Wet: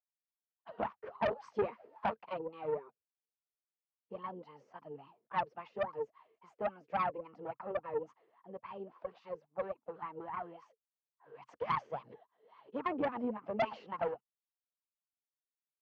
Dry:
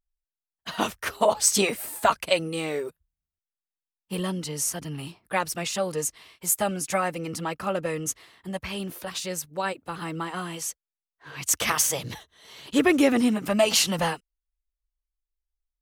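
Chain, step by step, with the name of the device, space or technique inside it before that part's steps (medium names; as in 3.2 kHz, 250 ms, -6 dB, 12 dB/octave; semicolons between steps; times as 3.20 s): wah-wah guitar rig (wah-wah 3.6 Hz 430–1100 Hz, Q 12; valve stage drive 33 dB, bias 0.6; cabinet simulation 91–4200 Hz, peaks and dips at 130 Hz +6 dB, 220 Hz +7 dB, 560 Hz -3 dB, 3.8 kHz -6 dB); trim +7.5 dB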